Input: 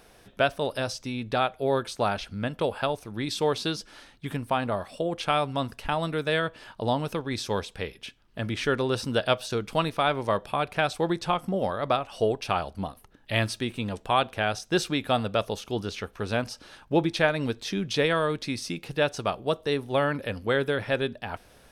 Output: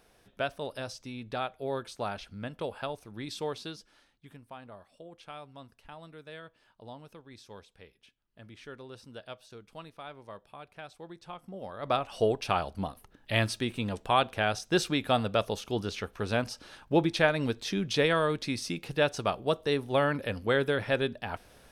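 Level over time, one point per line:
0:03.39 −8.5 dB
0:04.42 −20 dB
0:11.11 −20 dB
0:11.72 −13 dB
0:11.97 −1.5 dB

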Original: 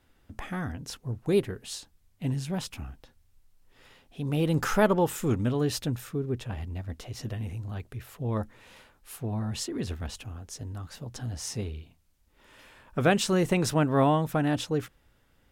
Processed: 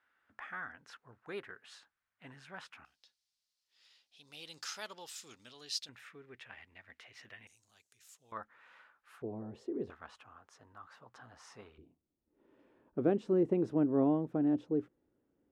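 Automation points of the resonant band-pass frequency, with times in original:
resonant band-pass, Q 2.5
1,500 Hz
from 0:02.85 4,700 Hz
from 0:05.89 2,000 Hz
from 0:07.47 6,800 Hz
from 0:08.32 1,400 Hz
from 0:09.22 410 Hz
from 0:09.90 1,200 Hz
from 0:11.78 330 Hz

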